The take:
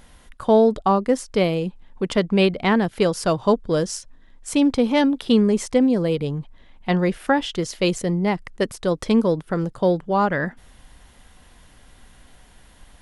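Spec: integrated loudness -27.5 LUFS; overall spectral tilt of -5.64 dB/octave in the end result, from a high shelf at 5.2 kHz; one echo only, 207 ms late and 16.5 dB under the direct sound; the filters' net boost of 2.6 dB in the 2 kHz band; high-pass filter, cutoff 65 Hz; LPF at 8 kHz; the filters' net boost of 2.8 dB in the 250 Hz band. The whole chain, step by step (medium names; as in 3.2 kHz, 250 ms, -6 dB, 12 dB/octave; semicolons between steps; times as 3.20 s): high-pass 65 Hz; low-pass 8 kHz; peaking EQ 250 Hz +3.5 dB; peaking EQ 2 kHz +4 dB; treble shelf 5.2 kHz -6 dB; delay 207 ms -16.5 dB; trim -8.5 dB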